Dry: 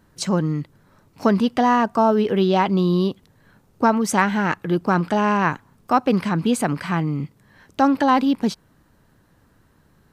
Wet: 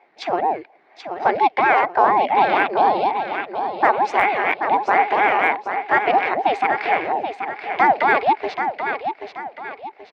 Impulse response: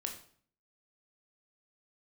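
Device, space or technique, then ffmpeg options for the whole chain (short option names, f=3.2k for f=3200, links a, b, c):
voice changer toy: -filter_complex "[0:a]aeval=exprs='val(0)*sin(2*PI*400*n/s+400*0.6/4.2*sin(2*PI*4.2*n/s))':c=same,highpass=500,equalizer=f=520:t=q:w=4:g=-5,equalizer=f=790:t=q:w=4:g=7,equalizer=f=1.3k:t=q:w=4:g=-6,equalizer=f=2.2k:t=q:w=4:g=9,equalizer=f=3.3k:t=q:w=4:g=-3,lowpass=f=3.7k:w=0.5412,lowpass=f=3.7k:w=1.3066,asettb=1/sr,asplit=3[a][b][c];[a]atrim=end=6.774[d];[b]atrim=start=6.77:end=8.01,asetpts=PTS-STARTPTS,afade=t=in:d=0.004:c=qsin,afade=t=out:st=1.236:d=0.004:c=qsin,equalizer=f=6.2k:w=0.92:g=4.5[e];[c]atrim=start=8.006[f];[d][e]acrossfade=d=0.004:c1=hsin:c2=qsin[g];[g][f]acrossfade=d=0.004:c1=qsin:c2=hsin,highpass=59,aecho=1:1:781|1562|2343|3124:0.398|0.151|0.0575|0.0218,deesser=0.75,volume=5dB"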